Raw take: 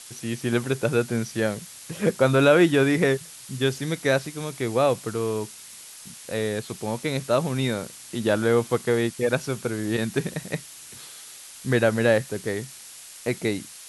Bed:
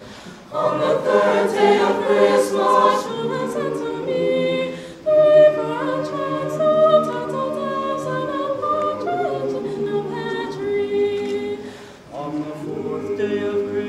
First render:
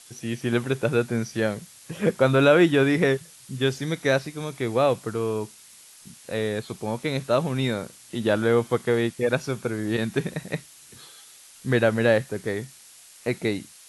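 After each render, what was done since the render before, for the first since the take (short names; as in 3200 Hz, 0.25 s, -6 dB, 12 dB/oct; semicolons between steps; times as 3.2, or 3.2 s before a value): noise print and reduce 6 dB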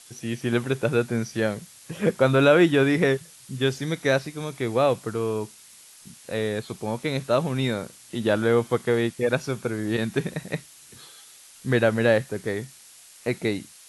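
nothing audible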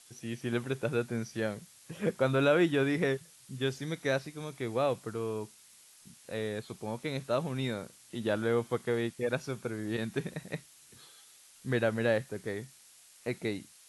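gain -8.5 dB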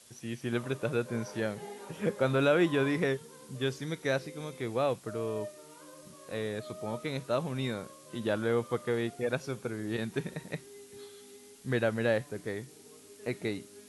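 add bed -30 dB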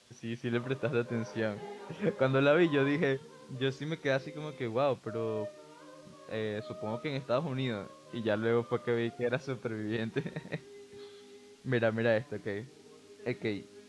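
LPF 4900 Hz 12 dB/oct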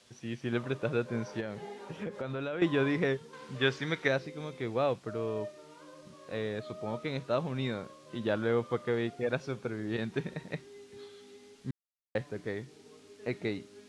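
1.4–2.62 compressor, threshold -33 dBFS; 3.33–4.08 bell 1700 Hz +10 dB 2.7 oct; 11.71–12.15 mute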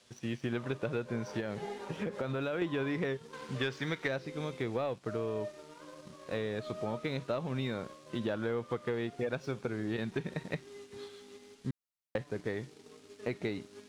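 sample leveller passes 1; compressor, threshold -31 dBFS, peak gain reduction 11 dB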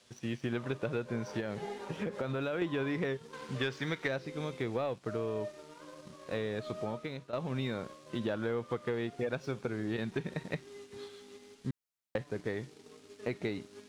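6.8–7.33 fade out, to -12.5 dB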